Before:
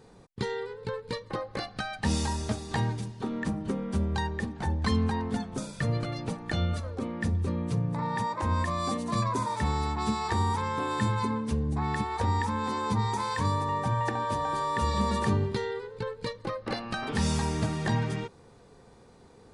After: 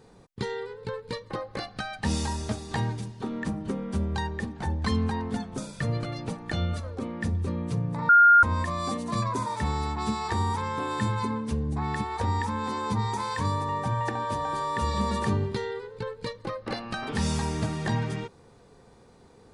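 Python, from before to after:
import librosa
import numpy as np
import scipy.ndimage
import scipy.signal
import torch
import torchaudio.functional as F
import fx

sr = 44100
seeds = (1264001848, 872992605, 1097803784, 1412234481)

y = fx.edit(x, sr, fx.bleep(start_s=8.09, length_s=0.34, hz=1410.0, db=-12.0), tone=tone)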